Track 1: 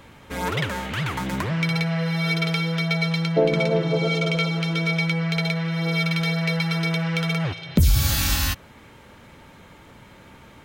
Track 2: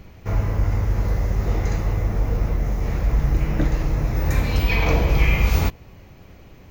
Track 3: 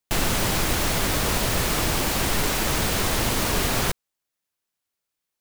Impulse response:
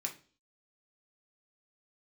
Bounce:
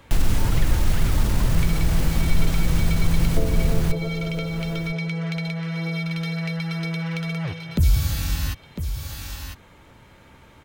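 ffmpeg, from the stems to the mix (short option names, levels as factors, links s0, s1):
-filter_complex "[0:a]equalizer=f=200:w=2.4:g=-3,volume=0.668,asplit=2[s0][s1];[s1]volume=0.299[s2];[2:a]alimiter=limit=0.112:level=0:latency=1,lowshelf=f=140:g=10.5,volume=1.19,asplit=2[s3][s4];[s4]volume=0.133[s5];[s2][s5]amix=inputs=2:normalize=0,aecho=0:1:1002:1[s6];[s0][s3][s6]amix=inputs=3:normalize=0,lowshelf=f=79:g=6,acrossover=split=300[s7][s8];[s8]acompressor=threshold=0.0282:ratio=4[s9];[s7][s9]amix=inputs=2:normalize=0"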